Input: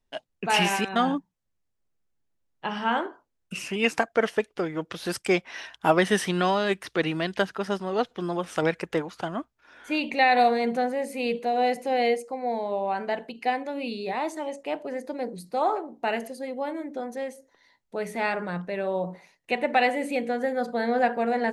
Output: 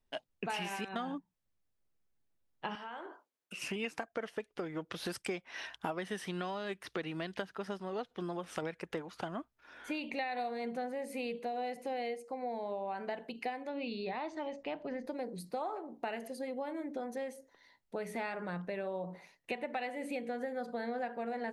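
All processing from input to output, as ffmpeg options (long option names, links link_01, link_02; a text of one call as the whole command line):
ffmpeg -i in.wav -filter_complex "[0:a]asettb=1/sr,asplit=3[link_01][link_02][link_03];[link_01]atrim=end=2.754[link_04];[link_02]atrim=start=2.75:end=3.62,asetpts=PTS-STARTPTS,afade=type=in:duration=0.004:curve=qsin,afade=type=out:start_time=0.866:duration=0.004:curve=qsin,highpass=340,acompressor=threshold=-38dB:ratio=8:attack=3.2:release=140:knee=1:detection=peak[link_05];[link_03]atrim=start=3.616[link_06];[link_04][link_05]acrossfade=duration=0.004:curve1=hsin:curve2=qsin[link_07];[link_07][link_06]acrossfade=duration=0.004:curve1=qsin:curve2=hsin,asettb=1/sr,asplit=3[link_08][link_09][link_10];[link_08]atrim=end=13.694[link_11];[link_09]atrim=start=13.69:end=15.07,asetpts=PTS-STARTPTS,afade=type=in:duration=0.004:curve=qsin,afade=type=out:start_time=1.376:duration=0.004:curve=qsin,lowpass=frequency=5300:width=0.5412,lowpass=frequency=5300:width=1.3066,asubboost=boost=8.5:cutoff=190[link_12];[link_10]atrim=start=15.066[link_13];[link_11][link_12]acrossfade=duration=0.004:curve1=hsin:curve2=qsin[link_14];[link_14][link_13]acrossfade=duration=0.004:curve1=qsin:curve2=hsin,equalizer=frequency=7100:width_type=o:width=0.77:gain=-2.5,acompressor=threshold=-33dB:ratio=6,volume=-2.5dB" out.wav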